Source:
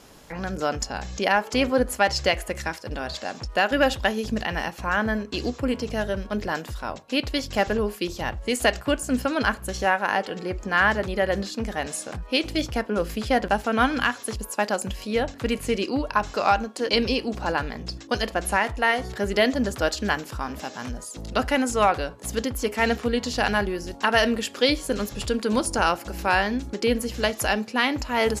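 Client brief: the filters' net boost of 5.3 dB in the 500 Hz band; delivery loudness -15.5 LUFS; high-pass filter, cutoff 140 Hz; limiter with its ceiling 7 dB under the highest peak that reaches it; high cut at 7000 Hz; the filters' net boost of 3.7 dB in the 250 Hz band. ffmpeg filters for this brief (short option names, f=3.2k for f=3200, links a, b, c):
-af "highpass=140,lowpass=7k,equalizer=f=250:t=o:g=3.5,equalizer=f=500:t=o:g=5.5,volume=8.5dB,alimiter=limit=-3dB:level=0:latency=1"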